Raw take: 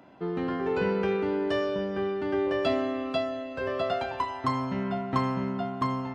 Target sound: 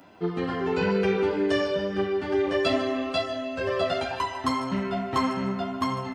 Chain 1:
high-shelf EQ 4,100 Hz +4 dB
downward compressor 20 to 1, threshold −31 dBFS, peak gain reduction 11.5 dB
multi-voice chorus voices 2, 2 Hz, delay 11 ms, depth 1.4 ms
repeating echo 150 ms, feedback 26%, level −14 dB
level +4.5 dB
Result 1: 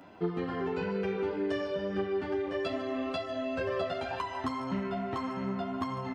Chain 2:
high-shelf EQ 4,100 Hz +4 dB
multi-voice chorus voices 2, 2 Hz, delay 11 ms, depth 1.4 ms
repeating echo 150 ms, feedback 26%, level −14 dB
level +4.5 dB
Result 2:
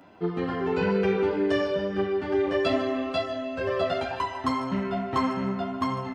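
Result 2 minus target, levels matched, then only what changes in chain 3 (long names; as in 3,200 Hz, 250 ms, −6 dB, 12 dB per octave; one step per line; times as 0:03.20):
8,000 Hz band −6.0 dB
change: high-shelf EQ 4,100 Hz +12.5 dB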